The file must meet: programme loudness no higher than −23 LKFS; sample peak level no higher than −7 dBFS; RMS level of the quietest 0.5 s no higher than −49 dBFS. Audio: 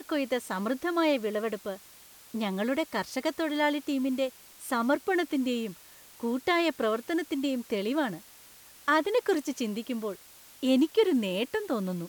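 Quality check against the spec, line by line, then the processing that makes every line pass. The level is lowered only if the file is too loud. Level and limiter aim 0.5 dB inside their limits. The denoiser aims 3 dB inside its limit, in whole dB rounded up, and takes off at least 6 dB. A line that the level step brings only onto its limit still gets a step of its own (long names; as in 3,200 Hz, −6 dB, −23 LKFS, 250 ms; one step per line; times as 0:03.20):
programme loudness −29.5 LKFS: in spec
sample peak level −12.5 dBFS: in spec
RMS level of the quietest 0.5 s −53 dBFS: in spec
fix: no processing needed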